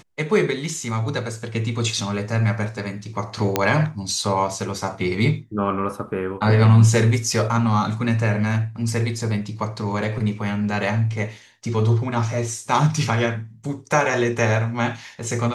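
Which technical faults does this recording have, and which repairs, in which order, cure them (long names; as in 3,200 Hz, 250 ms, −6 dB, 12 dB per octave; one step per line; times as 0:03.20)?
0:03.56: click −3 dBFS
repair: click removal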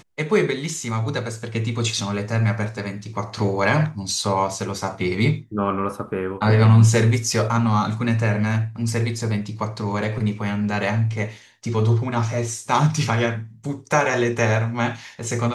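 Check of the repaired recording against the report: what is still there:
none of them is left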